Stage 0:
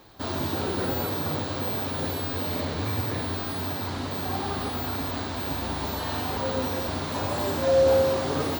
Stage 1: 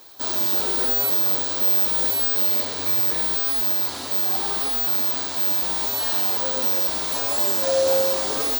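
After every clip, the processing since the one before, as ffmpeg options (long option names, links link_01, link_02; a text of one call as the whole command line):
ffmpeg -i in.wav -af "bass=frequency=250:gain=-14,treble=frequency=4000:gain=14" out.wav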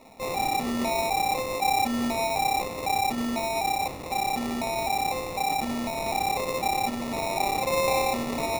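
ffmpeg -i in.wav -af "acrusher=samples=28:mix=1:aa=0.000001,volume=-5dB" out.wav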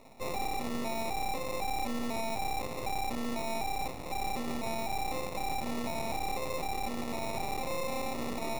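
ffmpeg -i in.wav -af "alimiter=level_in=1.5dB:limit=-24dB:level=0:latency=1:release=18,volume=-1.5dB,aeval=exprs='max(val(0),0)':channel_layout=same" out.wav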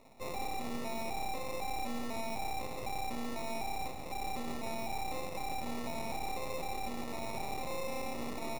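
ffmpeg -i in.wav -af "aecho=1:1:166:0.335,volume=-4.5dB" out.wav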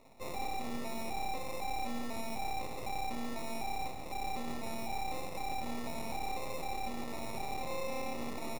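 ffmpeg -i in.wav -filter_complex "[0:a]asplit=2[link_01][link_02];[link_02]adelay=26,volume=-11.5dB[link_03];[link_01][link_03]amix=inputs=2:normalize=0,volume=-1dB" out.wav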